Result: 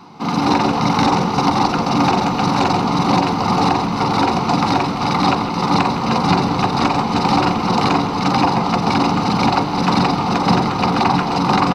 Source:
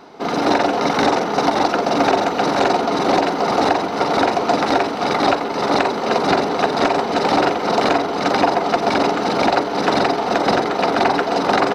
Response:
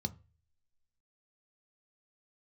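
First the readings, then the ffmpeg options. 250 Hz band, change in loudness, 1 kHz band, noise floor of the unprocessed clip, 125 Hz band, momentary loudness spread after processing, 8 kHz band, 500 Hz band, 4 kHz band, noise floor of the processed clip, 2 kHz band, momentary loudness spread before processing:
+4.0 dB, +1.0 dB, +1.5 dB, -23 dBFS, +11.5 dB, 2 LU, +1.0 dB, -5.5 dB, +1.5 dB, -21 dBFS, -2.0 dB, 2 LU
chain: -filter_complex "[0:a]asplit=5[s0][s1][s2][s3][s4];[s1]adelay=159,afreqshift=-76,volume=0.251[s5];[s2]adelay=318,afreqshift=-152,volume=0.111[s6];[s3]adelay=477,afreqshift=-228,volume=0.0484[s7];[s4]adelay=636,afreqshift=-304,volume=0.0214[s8];[s0][s5][s6][s7][s8]amix=inputs=5:normalize=0,asplit=2[s9][s10];[1:a]atrim=start_sample=2205,lowpass=2000,lowshelf=f=370:g=-6[s11];[s10][s11]afir=irnorm=-1:irlink=0,volume=1.12[s12];[s9][s12]amix=inputs=2:normalize=0"

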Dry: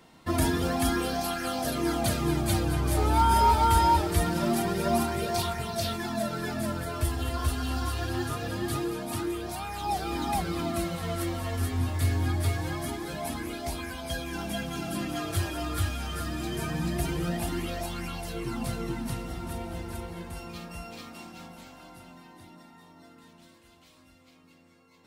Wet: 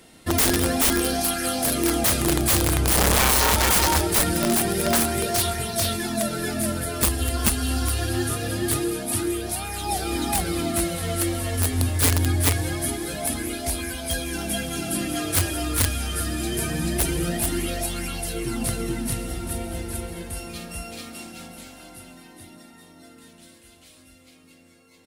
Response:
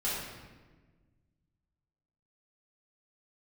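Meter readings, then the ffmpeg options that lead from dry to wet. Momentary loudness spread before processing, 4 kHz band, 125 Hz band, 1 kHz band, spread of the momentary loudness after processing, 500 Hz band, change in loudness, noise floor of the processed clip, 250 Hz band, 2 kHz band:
12 LU, +9.0 dB, +3.5 dB, -0.5 dB, 12 LU, +4.5 dB, +6.5 dB, -52 dBFS, +4.5 dB, +7.5 dB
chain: -af "equalizer=f=160:t=o:w=0.67:g=-5,equalizer=f=1000:t=o:w=0.67:g=-10,equalizer=f=10000:t=o:w=0.67:g=10,aecho=1:1:135:0.141,aeval=exprs='(mod(9.44*val(0)+1,2)-1)/9.44':c=same,volume=2.11"

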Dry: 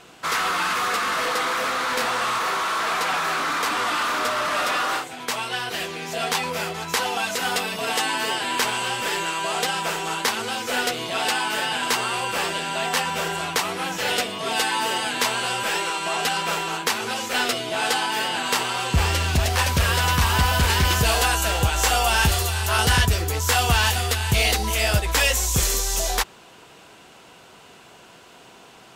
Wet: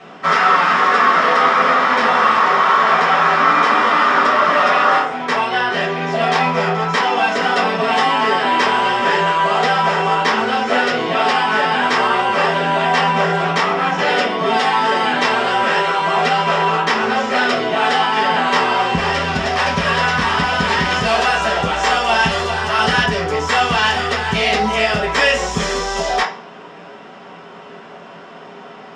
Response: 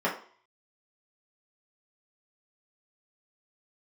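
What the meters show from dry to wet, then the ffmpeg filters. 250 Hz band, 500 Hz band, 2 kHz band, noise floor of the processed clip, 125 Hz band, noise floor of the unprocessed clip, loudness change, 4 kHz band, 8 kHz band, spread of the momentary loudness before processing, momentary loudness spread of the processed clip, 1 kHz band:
+9.0 dB, +10.0 dB, +7.5 dB, -37 dBFS, -1.5 dB, -48 dBFS, +7.0 dB, +2.5 dB, -7.5 dB, 6 LU, 5 LU, +10.5 dB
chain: -filter_complex "[0:a]lowpass=f=7000:w=0.5412,lowpass=f=7000:w=1.3066,acrossover=split=2100[s0][s1];[s0]alimiter=limit=0.1:level=0:latency=1[s2];[s2][s1]amix=inputs=2:normalize=0[s3];[1:a]atrim=start_sample=2205[s4];[s3][s4]afir=irnorm=-1:irlink=0,volume=0.891"

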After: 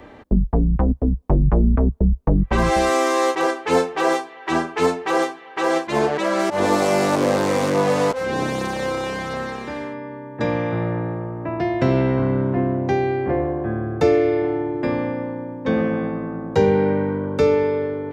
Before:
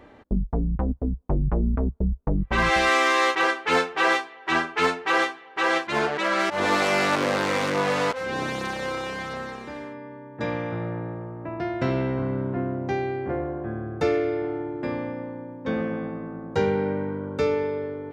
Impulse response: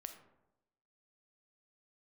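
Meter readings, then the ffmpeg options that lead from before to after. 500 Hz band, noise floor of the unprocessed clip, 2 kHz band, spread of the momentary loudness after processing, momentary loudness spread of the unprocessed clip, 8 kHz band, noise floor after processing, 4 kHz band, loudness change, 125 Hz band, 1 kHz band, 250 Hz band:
+6.5 dB, -46 dBFS, -2.5 dB, 9 LU, 12 LU, +4.5 dB, -41 dBFS, -1.5 dB, +4.5 dB, +7.0 dB, +2.5 dB, +7.0 dB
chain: -filter_complex "[0:a]bandreject=f=1400:w=22,acrossover=split=200|920|5700[s0][s1][s2][s3];[s2]acompressor=threshold=0.0141:ratio=6[s4];[s0][s1][s4][s3]amix=inputs=4:normalize=0,volume=2.24"

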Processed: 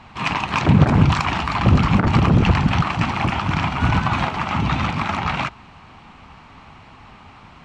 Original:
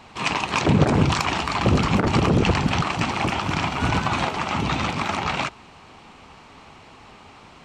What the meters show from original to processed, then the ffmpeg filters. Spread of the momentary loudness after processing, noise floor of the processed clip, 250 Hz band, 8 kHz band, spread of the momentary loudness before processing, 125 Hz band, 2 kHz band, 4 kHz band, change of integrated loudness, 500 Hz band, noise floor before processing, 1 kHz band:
7 LU, -45 dBFS, +3.0 dB, -5.5 dB, 6 LU, +5.5 dB, +1.5 dB, -1.0 dB, +3.0 dB, -2.0 dB, -48 dBFS, +2.5 dB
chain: -af "lowpass=f=1500:p=1,equalizer=f=440:w=0.94:g=-10.5,volume=2.24"

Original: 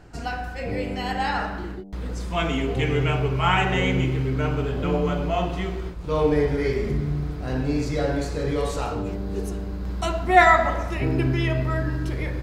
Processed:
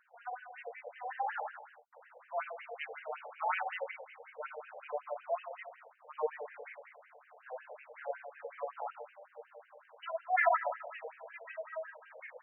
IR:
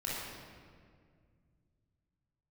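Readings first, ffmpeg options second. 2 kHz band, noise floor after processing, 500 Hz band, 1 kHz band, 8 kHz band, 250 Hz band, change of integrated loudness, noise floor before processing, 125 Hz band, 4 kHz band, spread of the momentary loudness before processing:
-13.5 dB, -64 dBFS, -15.0 dB, -12.5 dB, under -35 dB, under -40 dB, -15.0 dB, -32 dBFS, under -40 dB, -24.5 dB, 11 LU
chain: -af "tiltshelf=f=970:g=3.5,aresample=22050,aresample=44100,afftfilt=real='re*between(b*sr/1024,620*pow(2200/620,0.5+0.5*sin(2*PI*5.4*pts/sr))/1.41,620*pow(2200/620,0.5+0.5*sin(2*PI*5.4*pts/sr))*1.41)':imag='im*between(b*sr/1024,620*pow(2200/620,0.5+0.5*sin(2*PI*5.4*pts/sr))/1.41,620*pow(2200/620,0.5+0.5*sin(2*PI*5.4*pts/sr))*1.41)':win_size=1024:overlap=0.75,volume=0.398"

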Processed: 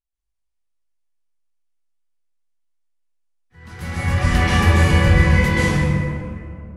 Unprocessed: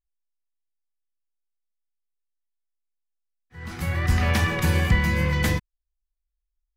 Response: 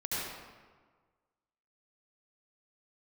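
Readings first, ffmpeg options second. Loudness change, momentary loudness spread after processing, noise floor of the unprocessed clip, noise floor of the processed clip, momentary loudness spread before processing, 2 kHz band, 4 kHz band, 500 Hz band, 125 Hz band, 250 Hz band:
+6.5 dB, 16 LU, -82 dBFS, -75 dBFS, 10 LU, +6.0 dB, +5.5 dB, +7.5 dB, +7.0 dB, +7.5 dB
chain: -filter_complex "[1:a]atrim=start_sample=2205,asetrate=22932,aresample=44100[s0];[0:a][s0]afir=irnorm=-1:irlink=0,volume=0.631"

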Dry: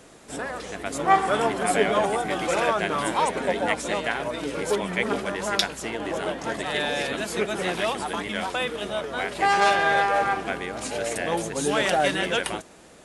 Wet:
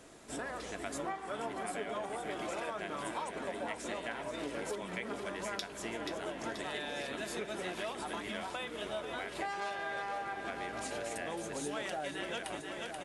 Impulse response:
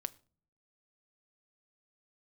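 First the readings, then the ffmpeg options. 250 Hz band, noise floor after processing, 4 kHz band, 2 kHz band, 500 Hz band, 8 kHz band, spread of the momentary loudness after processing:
-12.0 dB, -45 dBFS, -13.5 dB, -14.0 dB, -14.0 dB, -12.0 dB, 2 LU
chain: -filter_complex "[0:a]aecho=1:1:482|964|1446|1928|2410|2892:0.266|0.138|0.0719|0.0374|0.0195|0.0101,acompressor=threshold=0.0316:ratio=6[s0];[1:a]atrim=start_sample=2205,asetrate=74970,aresample=44100[s1];[s0][s1]afir=irnorm=-1:irlink=0"

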